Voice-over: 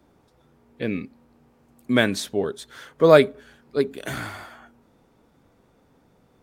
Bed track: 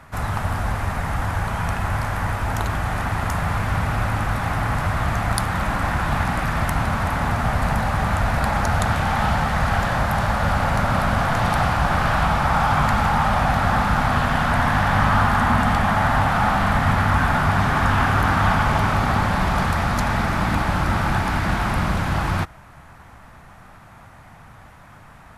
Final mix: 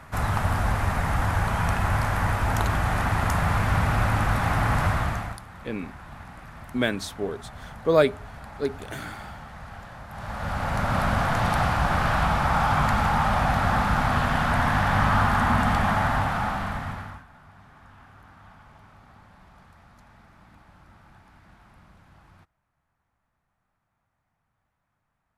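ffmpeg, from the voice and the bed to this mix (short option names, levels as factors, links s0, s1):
-filter_complex "[0:a]adelay=4850,volume=0.531[s0];[1:a]volume=7.08,afade=t=out:st=4.86:d=0.53:silence=0.0944061,afade=t=in:st=10.09:d=0.94:silence=0.133352,afade=t=out:st=15.89:d=1.35:silence=0.0354813[s1];[s0][s1]amix=inputs=2:normalize=0"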